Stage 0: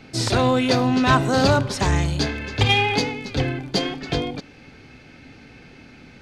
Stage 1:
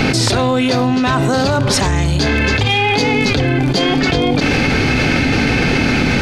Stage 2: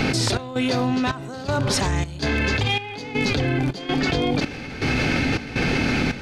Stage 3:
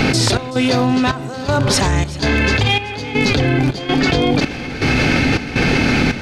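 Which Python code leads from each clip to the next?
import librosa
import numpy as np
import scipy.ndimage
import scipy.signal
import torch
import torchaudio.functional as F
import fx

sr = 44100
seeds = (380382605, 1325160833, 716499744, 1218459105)

y1 = fx.env_flatten(x, sr, amount_pct=100)
y1 = y1 * librosa.db_to_amplitude(-1.0)
y2 = fx.step_gate(y1, sr, bpm=81, pattern='xx.xxx..x', floor_db=-12.0, edge_ms=4.5)
y2 = y2 * librosa.db_to_amplitude(-7.0)
y3 = fx.echo_feedback(y2, sr, ms=377, feedback_pct=39, wet_db=-19.0)
y3 = y3 * librosa.db_to_amplitude(6.5)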